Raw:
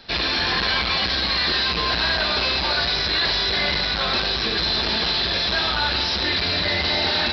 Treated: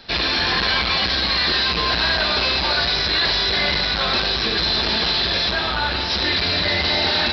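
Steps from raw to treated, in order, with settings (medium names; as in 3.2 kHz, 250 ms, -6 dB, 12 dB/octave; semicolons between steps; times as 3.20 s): 5.51–6.10 s: treble shelf 4.3 kHz -9 dB; trim +2 dB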